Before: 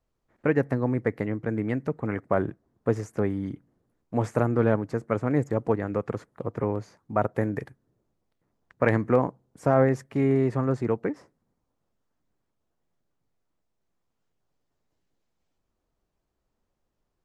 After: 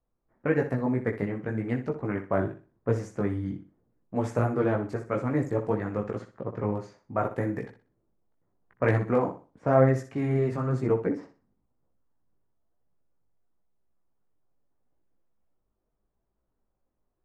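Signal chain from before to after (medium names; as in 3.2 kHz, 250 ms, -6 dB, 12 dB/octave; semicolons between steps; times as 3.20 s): level-controlled noise filter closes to 1.4 kHz, open at -23.5 dBFS; chorus voices 4, 1 Hz, delay 18 ms, depth 3 ms; flutter echo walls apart 10.6 m, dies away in 0.34 s; trim +1 dB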